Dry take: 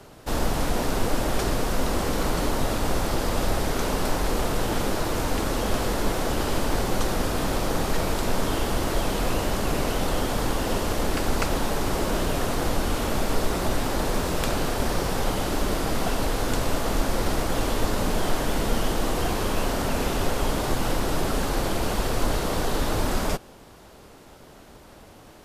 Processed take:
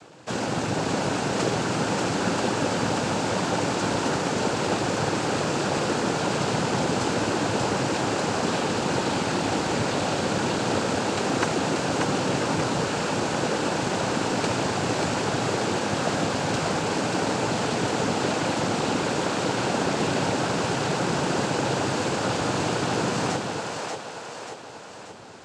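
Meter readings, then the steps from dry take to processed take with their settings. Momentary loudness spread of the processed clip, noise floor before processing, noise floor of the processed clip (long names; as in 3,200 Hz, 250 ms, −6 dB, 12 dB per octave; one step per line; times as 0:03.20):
2 LU, −48 dBFS, −38 dBFS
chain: cochlear-implant simulation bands 8
echo with a time of its own for lows and highs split 410 Hz, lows 205 ms, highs 585 ms, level −3.5 dB
level +1 dB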